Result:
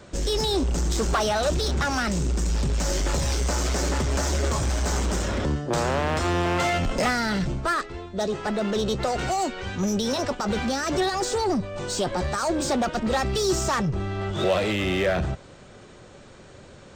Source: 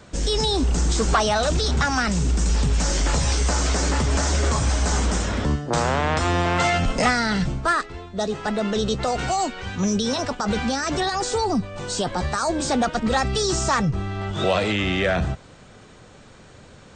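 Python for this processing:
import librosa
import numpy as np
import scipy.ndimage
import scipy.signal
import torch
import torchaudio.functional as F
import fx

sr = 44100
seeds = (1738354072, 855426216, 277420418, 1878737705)

p1 = np.clip(x, -10.0 ** (-23.5 / 20.0), 10.0 ** (-23.5 / 20.0))
p2 = x + (p1 * librosa.db_to_amplitude(2.5))
p3 = fx.small_body(p2, sr, hz=(370.0, 560.0), ring_ms=45, db=6)
y = p3 * librosa.db_to_amplitude(-8.5)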